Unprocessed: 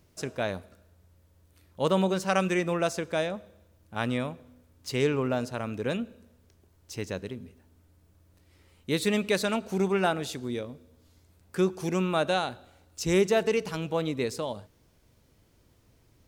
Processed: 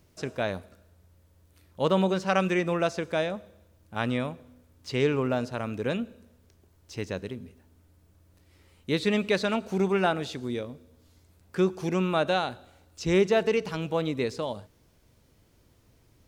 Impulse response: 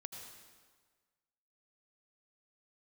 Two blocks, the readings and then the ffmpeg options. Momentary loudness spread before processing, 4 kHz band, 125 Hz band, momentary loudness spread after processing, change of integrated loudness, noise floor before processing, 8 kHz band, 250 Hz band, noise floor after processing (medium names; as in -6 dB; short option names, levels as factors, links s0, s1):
15 LU, 0.0 dB, +1.0 dB, 14 LU, +1.0 dB, -64 dBFS, -6.0 dB, +1.0 dB, -63 dBFS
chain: -filter_complex "[0:a]acrossover=split=5600[s0][s1];[s1]acompressor=threshold=0.00158:ratio=4:attack=1:release=60[s2];[s0][s2]amix=inputs=2:normalize=0,volume=1.12"